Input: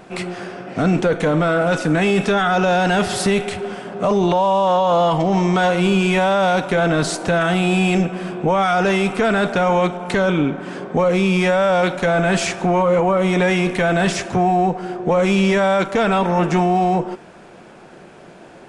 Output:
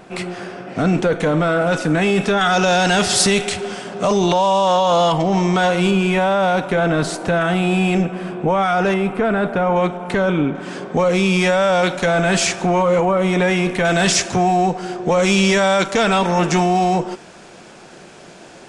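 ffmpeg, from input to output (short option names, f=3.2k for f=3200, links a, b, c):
-af "asetnsamples=n=441:p=0,asendcmd='2.41 equalizer g 11.5;5.12 equalizer g 3.5;5.91 equalizer g -3.5;8.94 equalizer g -14.5;9.76 equalizer g -5;10.55 equalizer g 6.5;13.05 equalizer g 0.5;13.85 equalizer g 11.5',equalizer=f=6.2k:t=o:w=2:g=1"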